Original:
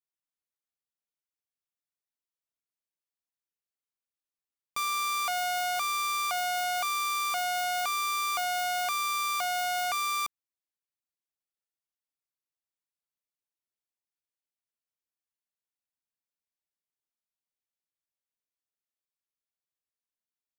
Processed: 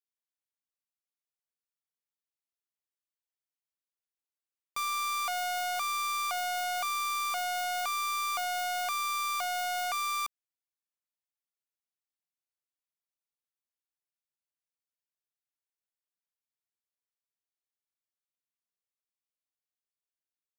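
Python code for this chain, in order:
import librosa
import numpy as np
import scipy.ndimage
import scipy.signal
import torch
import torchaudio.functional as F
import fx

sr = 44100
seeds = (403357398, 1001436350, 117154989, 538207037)

y = fx.low_shelf(x, sr, hz=370.0, db=-7.5)
y = fx.leveller(y, sr, passes=1)
y = F.gain(torch.from_numpy(y), -3.5).numpy()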